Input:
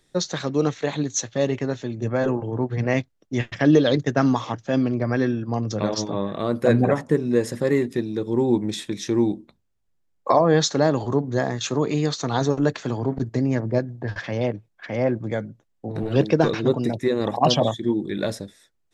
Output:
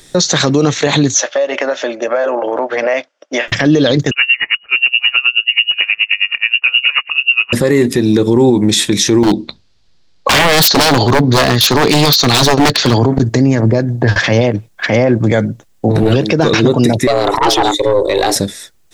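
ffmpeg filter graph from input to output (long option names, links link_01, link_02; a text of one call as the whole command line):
ffmpeg -i in.wav -filter_complex "[0:a]asettb=1/sr,asplit=3[link_01][link_02][link_03];[link_01]atrim=end=1.144[link_04];[link_02]atrim=start=1.14:end=3.48,asetpts=PTS-STARTPTS,afade=type=in:duration=0.004:curve=qsin,afade=type=out:start_time=2.336:duration=0.004:curve=qsin,highpass=frequency=380:width=0.5412,highpass=frequency=380:width=1.3066,equalizer=frequency=400:width_type=q:width=4:gain=-10,equalizer=frequency=590:width_type=q:width=4:gain=10,equalizer=frequency=1400:width_type=q:width=4:gain=4,equalizer=frequency=4100:width_type=q:width=4:gain=-10,lowpass=frequency=5200:width=0.5412,lowpass=frequency=5200:width=1.3066,acompressor=threshold=-31dB:ratio=8:attack=3.2:release=140:knee=1:detection=peak[link_05];[link_03]atrim=start=3.476[link_06];[link_04][link_05]acrossfade=duration=0.004:curve1=hsin:curve2=qsin[link_07];[link_07][link_06]acrossfade=duration=0.004:curve1=qsin:curve2=hsin,asettb=1/sr,asplit=3[link_08][link_09][link_10];[link_08]atrim=end=4.114[link_11];[link_09]atrim=start=4.11:end=7.53,asetpts=PTS-STARTPTS,afade=type=in:duration=0.004:curve=qsin,afade=type=out:start_time=3.416:duration=0.004:curve=qsin,lowpass=frequency=2600:width_type=q:width=0.5098,lowpass=frequency=2600:width_type=q:width=0.6013,lowpass=frequency=2600:width_type=q:width=0.9,lowpass=frequency=2600:width_type=q:width=2.563,afreqshift=-3000,aeval=exprs='val(0)*pow(10,-32*(0.5-0.5*cos(2*PI*9.4*n/s))/20)':channel_layout=same[link_12];[link_10]atrim=start=7.526[link_13];[link_11][link_12]acrossfade=duration=0.004:curve1=hsin:curve2=qsin[link_14];[link_14][link_13]acrossfade=duration=0.004:curve1=qsin:curve2=hsin,asettb=1/sr,asplit=3[link_15][link_16][link_17];[link_15]atrim=end=9.234[link_18];[link_16]atrim=start=9.23:end=12.99,asetpts=PTS-STARTPTS,afade=type=in:duration=0.004:curve=qsin,afade=type=out:start_time=3.756:duration=0.004:curve=qsin,lowpass=frequency=4400:width_type=q:width=3.1,aeval=exprs='0.112*(abs(mod(val(0)/0.112+3,4)-2)-1)':channel_layout=same[link_19];[link_17]atrim=start=12.986[link_20];[link_18][link_19]acrossfade=duration=0.004:curve1=hsin:curve2=qsin[link_21];[link_21][link_20]acrossfade=duration=0.004:curve1=qsin:curve2=hsin,asettb=1/sr,asplit=3[link_22][link_23][link_24];[link_22]atrim=end=17.074[link_25];[link_23]atrim=start=17.07:end=18.36,asetpts=PTS-STARTPTS,afade=type=in:duration=0.004:curve=qsin,afade=type=out:start_time=1.286:duration=0.004:curve=qsin,afreqshift=190,aeval=exprs='(tanh(5.62*val(0)+0.6)-tanh(0.6))/5.62':channel_layout=same[link_26];[link_24]atrim=start=18.356[link_27];[link_25][link_26]acrossfade=duration=0.004:curve1=hsin:curve2=qsin[link_28];[link_28][link_27]acrossfade=duration=0.004:curve1=qsin:curve2=hsin,acompressor=threshold=-21dB:ratio=6,highshelf=frequency=3100:gain=7.5,alimiter=level_in=20.5dB:limit=-1dB:release=50:level=0:latency=1,volume=-1dB" out.wav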